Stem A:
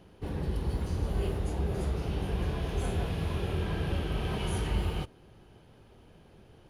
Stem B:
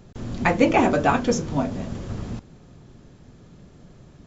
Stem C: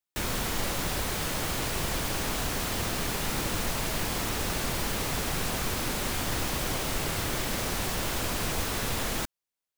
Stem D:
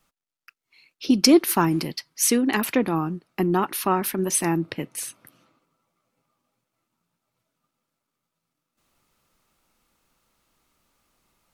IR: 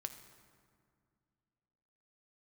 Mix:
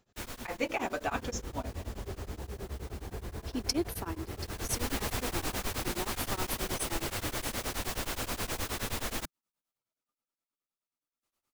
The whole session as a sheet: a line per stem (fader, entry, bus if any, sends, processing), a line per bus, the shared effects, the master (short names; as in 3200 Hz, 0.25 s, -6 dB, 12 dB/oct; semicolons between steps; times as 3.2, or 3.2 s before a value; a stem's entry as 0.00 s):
-0.5 dB, 0.85 s, no send, steep low-pass 2200 Hz 72 dB/oct; limiter -30 dBFS, peak gain reduction 10.5 dB
-13.0 dB, 0.00 s, no send, low shelf 490 Hz -11.5 dB; AGC gain up to 8.5 dB
-2.0 dB, 0.00 s, no send, auto duck -16 dB, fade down 0.65 s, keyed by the second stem
-14.0 dB, 2.45 s, no send, tone controls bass -4 dB, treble +3 dB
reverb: off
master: bell 160 Hz -13 dB 0.23 oct; beating tremolo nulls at 9.5 Hz